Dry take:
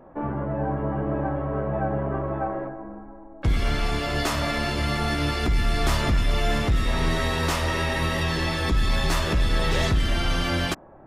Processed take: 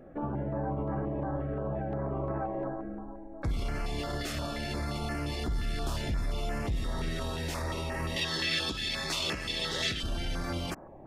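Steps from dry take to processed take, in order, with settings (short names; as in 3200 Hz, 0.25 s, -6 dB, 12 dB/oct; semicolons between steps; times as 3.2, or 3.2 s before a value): limiter -25 dBFS, peak gain reduction 11 dB; 8.16–10.03 weighting filter D; stepped notch 5.7 Hz 970–3600 Hz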